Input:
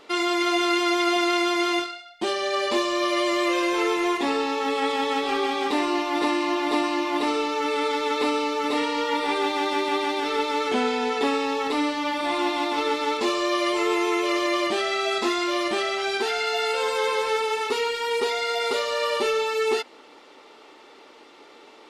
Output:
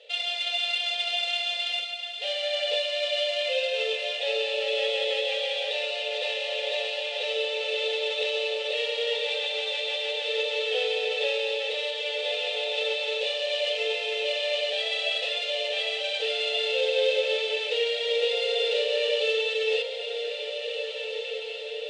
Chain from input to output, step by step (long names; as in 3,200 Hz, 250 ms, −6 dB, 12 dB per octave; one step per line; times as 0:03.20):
running median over 9 samples
high shelf with overshoot 2,500 Hz +12 dB, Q 3
on a send: feedback delay with all-pass diffusion 1,684 ms, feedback 60%, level −7.5 dB
on the sum: brick-wall band-pass 420–9,300 Hz
formant filter e
level +7 dB